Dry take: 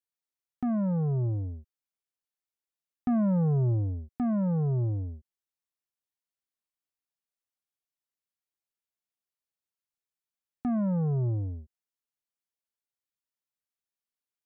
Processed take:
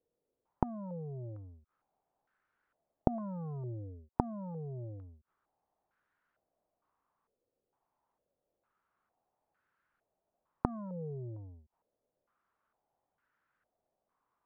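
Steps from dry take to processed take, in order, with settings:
gate with flip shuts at −39 dBFS, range −31 dB
low-pass on a step sequencer 2.2 Hz 480–1,500 Hz
level +15 dB

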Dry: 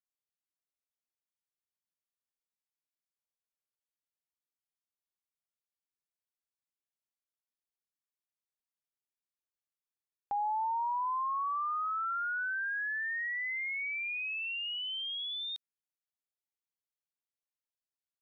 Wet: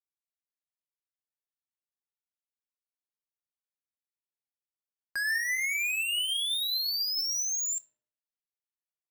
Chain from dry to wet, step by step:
notch filter 780 Hz, Q 15
leveller curve on the samples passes 5
feedback delay network reverb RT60 1.1 s, low-frequency decay 1.4×, high-frequency decay 0.45×, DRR 10 dB
wrong playback speed 7.5 ips tape played at 15 ips

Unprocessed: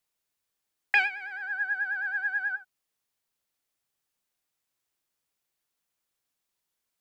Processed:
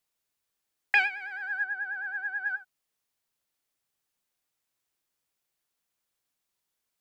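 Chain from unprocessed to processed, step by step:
0:01.64–0:02.46: high-shelf EQ 2,400 Hz −12 dB

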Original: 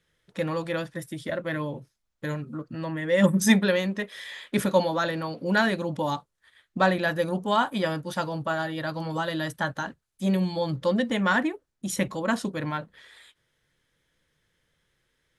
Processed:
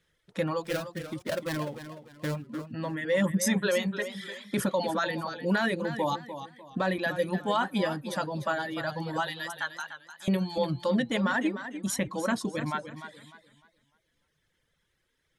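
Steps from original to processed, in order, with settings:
0:00.64–0:02.47: gap after every zero crossing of 0.19 ms
reverb reduction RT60 1.5 s
0:09.27–0:10.28: high-pass filter 1,400 Hz 12 dB per octave
brickwall limiter −17.5 dBFS, peak gain reduction 10.5 dB
feedback echo with a swinging delay time 299 ms, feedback 31%, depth 82 cents, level −11 dB

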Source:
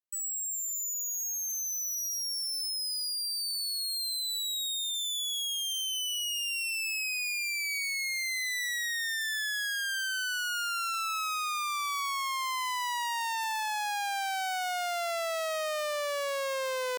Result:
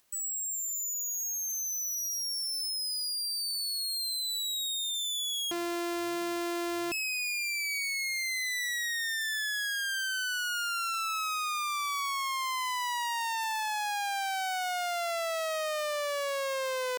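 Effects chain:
0:05.51–0:06.92: samples sorted by size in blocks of 128 samples
upward compression, threshold −49 dBFS

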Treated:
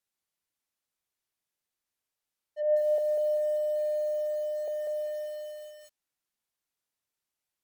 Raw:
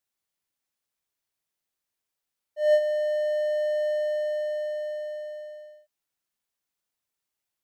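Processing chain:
treble cut that deepens with the level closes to 600 Hz, closed at −26 dBFS
0:02.98–0:04.68: Butterworth low-pass 2,300 Hz 96 dB per octave
feedback echo at a low word length 194 ms, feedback 35%, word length 8 bits, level −4.5 dB
level −2 dB

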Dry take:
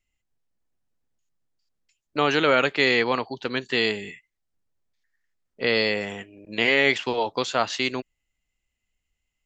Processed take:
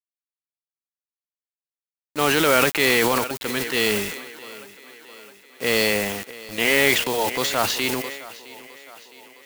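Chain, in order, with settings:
noise that follows the level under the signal 10 dB
bit reduction 6 bits
on a send: feedback echo with a high-pass in the loop 662 ms, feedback 58%, high-pass 180 Hz, level −19 dB
on the sum: transient designer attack −3 dB, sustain +8 dB
level +1.5 dB

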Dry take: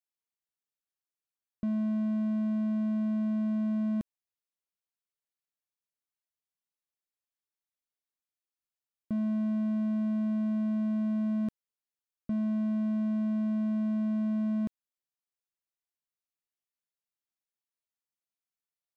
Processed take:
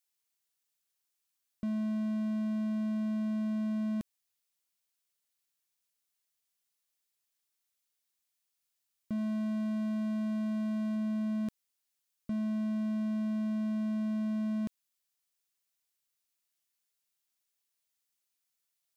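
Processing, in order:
0:09.18–0:10.96: parametric band 230 Hz −2 dB
brickwall limiter −29 dBFS, peak gain reduction 4.5 dB
high-shelf EQ 2,100 Hz +10.5 dB
level +1.5 dB

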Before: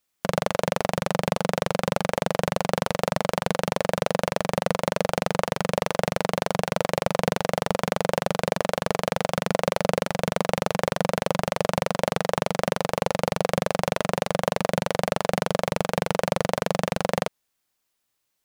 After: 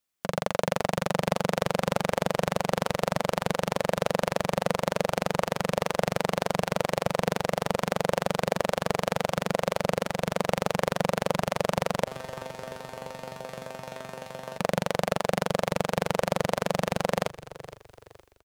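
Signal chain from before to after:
automatic gain control gain up to 11 dB
0:12.04–0:14.58: tuned comb filter 130 Hz, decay 0.41 s, harmonics all, mix 90%
echo with shifted repeats 466 ms, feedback 37%, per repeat −38 Hz, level −16 dB
level −6 dB

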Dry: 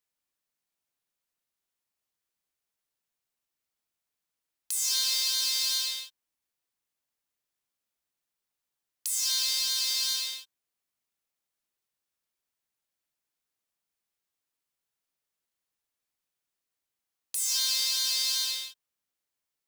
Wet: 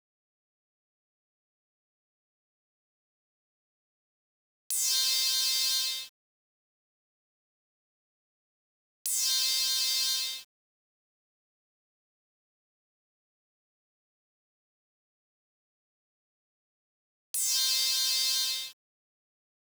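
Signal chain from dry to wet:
centre clipping without the shift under −47 dBFS

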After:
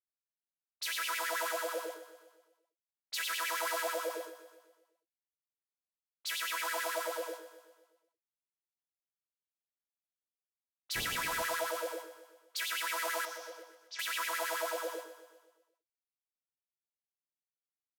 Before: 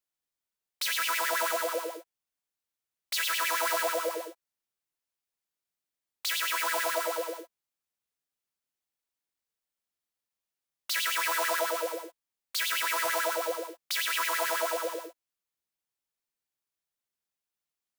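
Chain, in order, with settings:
0:10.95–0:11.41: wind on the microphone 490 Hz −33 dBFS
noise gate −39 dBFS, range −13 dB
0:13.25–0:13.99: transistor ladder low-pass 6,400 Hz, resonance 65%
low-pass that shuts in the quiet parts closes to 1,200 Hz, open at −31.5 dBFS
on a send: repeating echo 125 ms, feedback 56%, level −13 dB
on the sum: level −6 dB

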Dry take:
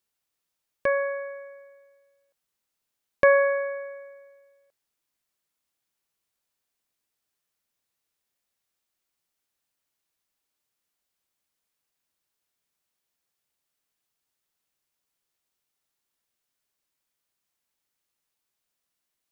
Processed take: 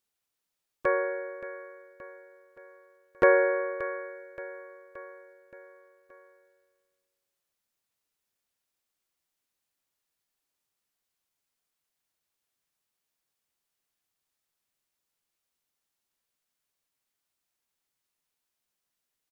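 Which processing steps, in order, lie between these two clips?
repeating echo 574 ms, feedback 55%, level −14.5 dB
pitch-shifted copies added −7 semitones −7 dB, −3 semitones −7 dB
level −3.5 dB

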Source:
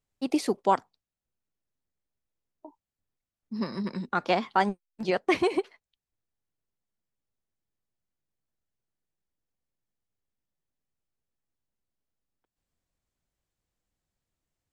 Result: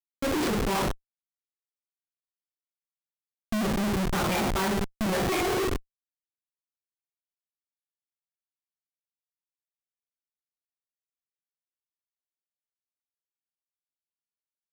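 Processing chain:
spectral magnitudes quantised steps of 30 dB
coupled-rooms reverb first 0.48 s, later 3.7 s, from −28 dB, DRR −8 dB
comparator with hysteresis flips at −26.5 dBFS

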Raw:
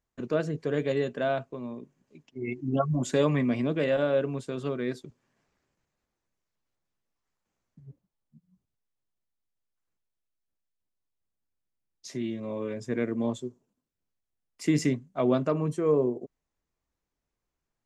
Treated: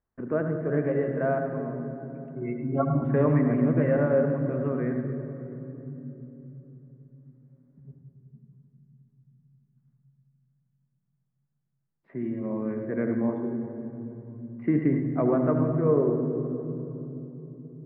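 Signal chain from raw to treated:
Butterworth low-pass 1,900 Hz 36 dB per octave
on a send: convolution reverb RT60 3.5 s, pre-delay 74 ms, DRR 4.5 dB

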